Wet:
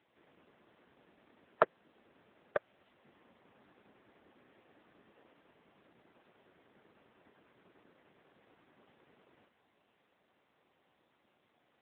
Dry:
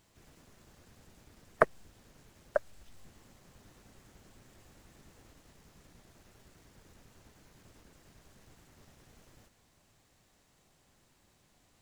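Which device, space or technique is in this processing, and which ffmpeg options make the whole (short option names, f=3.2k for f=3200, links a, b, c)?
telephone: -af "highpass=270,lowpass=3.1k,asoftclip=type=tanh:threshold=-7.5dB" -ar 8000 -c:a libopencore_amrnb -b:a 7950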